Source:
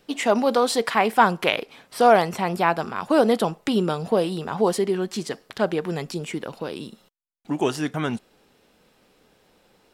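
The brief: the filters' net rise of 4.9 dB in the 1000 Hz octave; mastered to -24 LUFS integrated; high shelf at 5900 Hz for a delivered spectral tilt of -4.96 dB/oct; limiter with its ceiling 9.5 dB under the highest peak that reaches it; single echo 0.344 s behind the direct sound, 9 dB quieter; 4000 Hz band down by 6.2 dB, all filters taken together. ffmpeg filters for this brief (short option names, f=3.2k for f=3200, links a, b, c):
-af "equalizer=f=1k:t=o:g=7,equalizer=f=4k:t=o:g=-7,highshelf=f=5.9k:g=-6.5,alimiter=limit=-8.5dB:level=0:latency=1,aecho=1:1:344:0.355,volume=-1.5dB"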